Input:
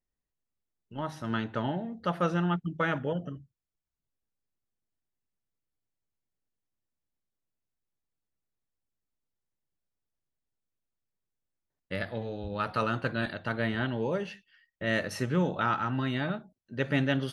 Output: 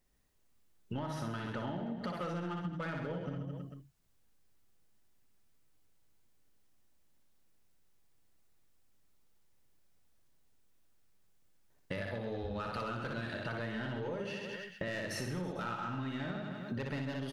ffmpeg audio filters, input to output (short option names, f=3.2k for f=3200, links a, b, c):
-af "aeval=exprs='0.211*sin(PI/2*1.78*val(0)/0.211)':c=same,alimiter=limit=-22.5dB:level=0:latency=1:release=313,aeval=exprs='0.075*(cos(1*acos(clip(val(0)/0.075,-1,1)))-cos(1*PI/2))+0.00266*(cos(5*acos(clip(val(0)/0.075,-1,1)))-cos(5*PI/2))':c=same,aecho=1:1:60|132|218.4|322.1|446.5:0.631|0.398|0.251|0.158|0.1,acompressor=threshold=-37dB:ratio=10,volume=1.5dB"